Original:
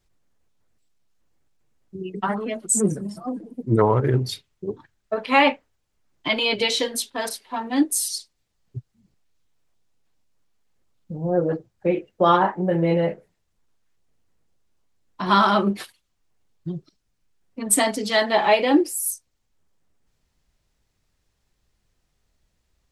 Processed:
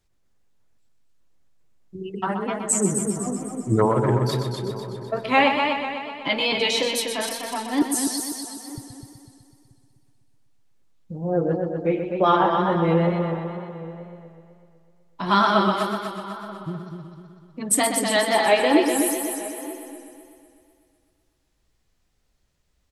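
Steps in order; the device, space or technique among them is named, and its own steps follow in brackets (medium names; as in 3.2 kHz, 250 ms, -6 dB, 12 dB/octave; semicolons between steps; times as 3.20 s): 7.82–8.78 s: elliptic high-pass 360 Hz; echo from a far wall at 160 m, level -18 dB; multi-head tape echo (multi-head delay 125 ms, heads first and second, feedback 56%, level -8 dB; wow and flutter 47 cents); trim -1.5 dB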